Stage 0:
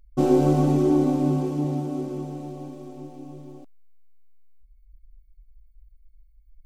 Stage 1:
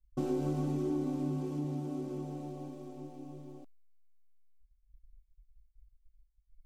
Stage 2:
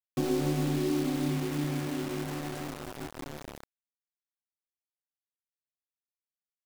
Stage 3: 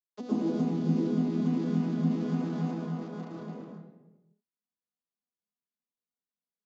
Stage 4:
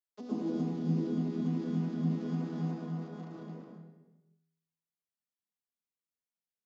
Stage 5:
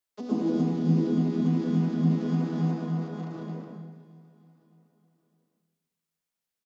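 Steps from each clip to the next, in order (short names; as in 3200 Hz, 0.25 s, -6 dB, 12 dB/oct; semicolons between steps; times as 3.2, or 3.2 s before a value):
expander -44 dBFS; dynamic EQ 650 Hz, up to -5 dB, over -36 dBFS, Q 1.5; compressor 2:1, threshold -28 dBFS, peak gain reduction 8 dB; gain -6.5 dB
bit-crush 7-bit; gain +4 dB
arpeggiated vocoder major triad, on E3, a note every 96 ms; compressor 5:1, threshold -31 dBFS, peak gain reduction 8.5 dB; reverb RT60 1.1 s, pre-delay 0.107 s, DRR -5.5 dB; gain -1.5 dB
resonator 81 Hz, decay 1 s, harmonics all, mix 70%; gain +3 dB
feedback echo 0.614 s, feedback 48%, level -22 dB; gain +7.5 dB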